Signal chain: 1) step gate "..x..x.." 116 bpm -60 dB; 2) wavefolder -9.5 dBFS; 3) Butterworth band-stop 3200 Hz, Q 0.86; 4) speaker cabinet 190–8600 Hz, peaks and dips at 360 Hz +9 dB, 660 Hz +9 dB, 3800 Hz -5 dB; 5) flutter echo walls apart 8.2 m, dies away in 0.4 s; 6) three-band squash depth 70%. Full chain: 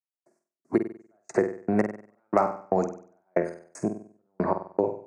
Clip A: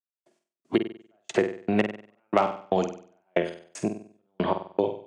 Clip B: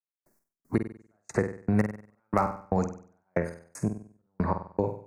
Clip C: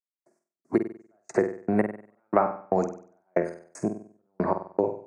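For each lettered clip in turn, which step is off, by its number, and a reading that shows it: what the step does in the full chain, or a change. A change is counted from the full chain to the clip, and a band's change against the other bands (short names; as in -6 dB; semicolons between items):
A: 3, 2 kHz band +4.0 dB; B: 4, 125 Hz band +7.0 dB; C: 2, distortion -19 dB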